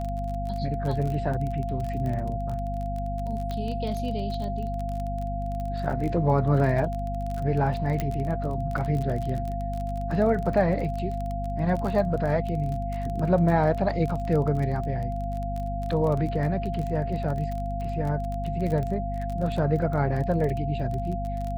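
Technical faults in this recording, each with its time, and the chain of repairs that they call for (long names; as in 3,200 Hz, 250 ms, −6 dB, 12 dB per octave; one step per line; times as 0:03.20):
surface crackle 26 per second −30 dBFS
mains hum 50 Hz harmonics 5 −31 dBFS
whistle 690 Hz −32 dBFS
0:03.51: click −20 dBFS
0:08.00: click −14 dBFS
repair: click removal
notch filter 690 Hz, Q 30
hum removal 50 Hz, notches 5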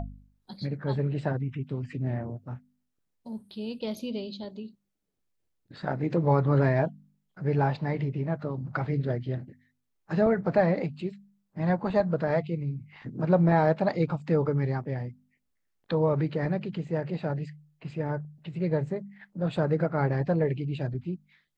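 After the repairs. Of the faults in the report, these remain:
none of them is left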